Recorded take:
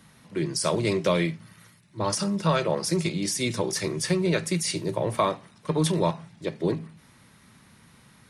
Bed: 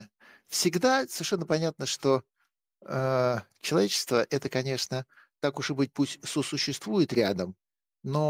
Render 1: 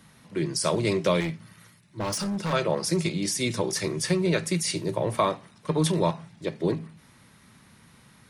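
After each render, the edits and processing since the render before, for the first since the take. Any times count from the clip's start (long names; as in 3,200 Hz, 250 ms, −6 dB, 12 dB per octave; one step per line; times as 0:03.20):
0:01.20–0:02.53: hard clipping −25.5 dBFS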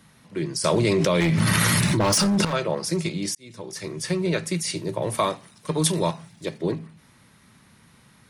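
0:00.64–0:02.45: envelope flattener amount 100%
0:03.35–0:04.21: fade in
0:05.02–0:06.58: high-shelf EQ 4,800 Hz +11.5 dB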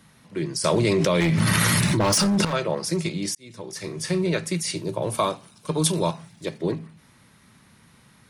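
0:03.77–0:04.24: flutter between parallel walls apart 6.5 metres, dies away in 0.21 s
0:04.82–0:06.14: parametric band 1,900 Hz −12 dB 0.2 octaves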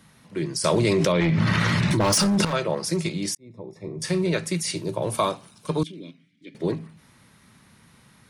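0:01.12–0:01.91: high-frequency loss of the air 150 metres
0:03.37–0:04.02: moving average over 29 samples
0:05.83–0:06.55: formant filter i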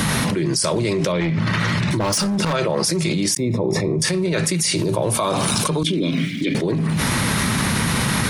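brickwall limiter −18 dBFS, peak gain reduction 9 dB
envelope flattener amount 100%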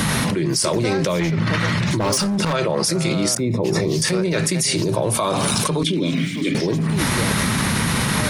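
mix in bed −4 dB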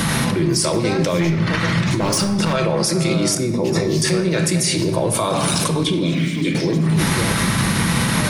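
rectangular room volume 890 cubic metres, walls mixed, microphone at 0.74 metres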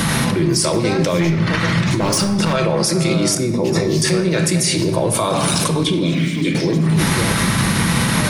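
level +1.5 dB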